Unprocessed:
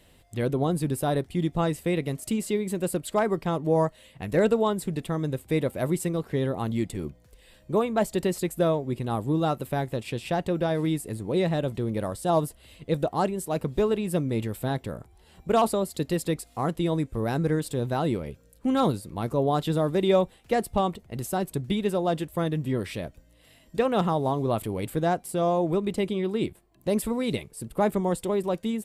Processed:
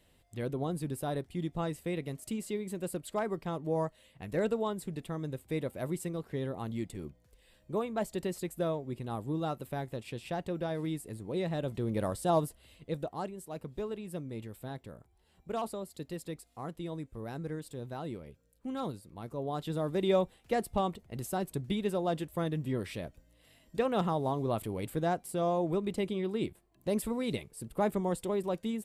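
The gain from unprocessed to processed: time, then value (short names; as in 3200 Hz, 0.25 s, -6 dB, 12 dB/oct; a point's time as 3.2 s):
11.45 s -9 dB
12.09 s -2 dB
13.33 s -13.5 dB
19.31 s -13.5 dB
20.06 s -6 dB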